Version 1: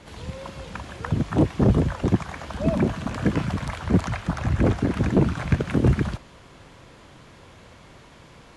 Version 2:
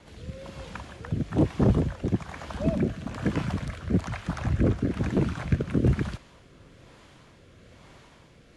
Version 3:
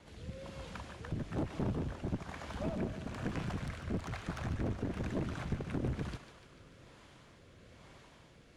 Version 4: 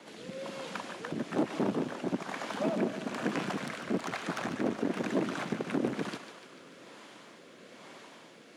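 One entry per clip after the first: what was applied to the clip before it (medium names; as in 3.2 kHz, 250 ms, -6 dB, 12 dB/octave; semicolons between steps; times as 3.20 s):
rotary cabinet horn 1.1 Hz; trim -2.5 dB
compression 3:1, threshold -24 dBFS, peak gain reduction 6.5 dB; one-sided clip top -34 dBFS; thinning echo 147 ms, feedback 66%, high-pass 420 Hz, level -10 dB; trim -5.5 dB
high-pass 210 Hz 24 dB/octave; trim +8.5 dB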